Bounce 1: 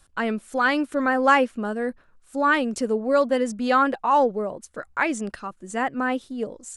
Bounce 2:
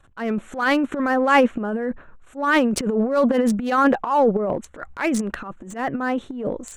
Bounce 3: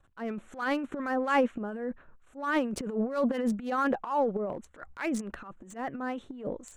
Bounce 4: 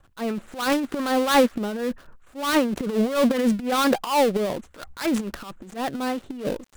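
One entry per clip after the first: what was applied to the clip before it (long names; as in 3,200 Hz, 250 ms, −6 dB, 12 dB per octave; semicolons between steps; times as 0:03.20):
adaptive Wiener filter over 9 samples; transient designer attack −11 dB, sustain +11 dB; level +2.5 dB
two-band tremolo in antiphase 4.3 Hz, depth 50%, crossover 1,100 Hz; level −8 dB
gap after every zero crossing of 0.19 ms; level +8 dB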